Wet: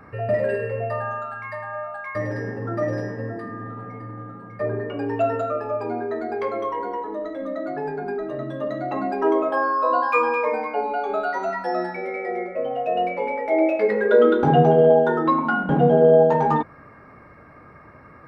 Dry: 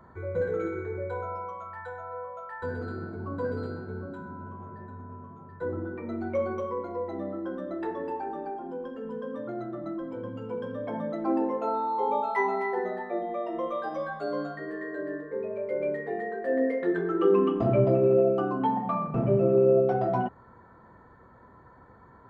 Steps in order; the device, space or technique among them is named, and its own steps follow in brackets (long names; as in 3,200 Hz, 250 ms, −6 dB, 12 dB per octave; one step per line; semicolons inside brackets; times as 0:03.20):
nightcore (speed change +22%)
level +7 dB